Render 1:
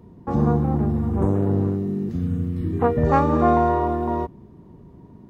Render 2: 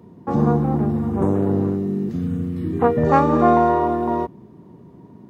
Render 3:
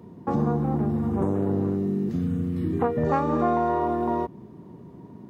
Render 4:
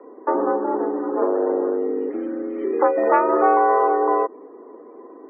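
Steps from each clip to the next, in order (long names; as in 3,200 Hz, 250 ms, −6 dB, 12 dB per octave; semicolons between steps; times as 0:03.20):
high-pass filter 130 Hz 12 dB per octave; level +3 dB
downward compressor 2.5 to 1, threshold −23 dBFS, peak gain reduction 9.5 dB
single-sideband voice off tune +67 Hz 280–2,900 Hz; spectral peaks only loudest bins 64; level +7.5 dB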